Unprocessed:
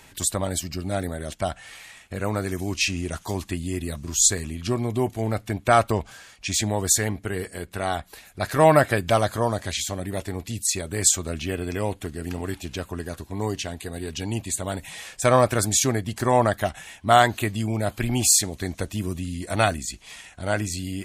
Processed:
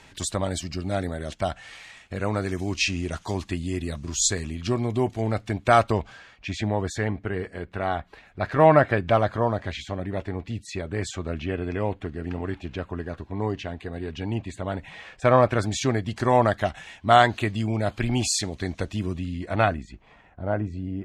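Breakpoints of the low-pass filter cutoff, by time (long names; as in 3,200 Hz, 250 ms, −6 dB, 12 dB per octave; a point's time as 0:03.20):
0:05.82 5,900 Hz
0:06.46 2,400 Hz
0:15.32 2,400 Hz
0:16.13 4,800 Hz
0:18.93 4,800 Hz
0:19.80 1,900 Hz
0:20.16 1,000 Hz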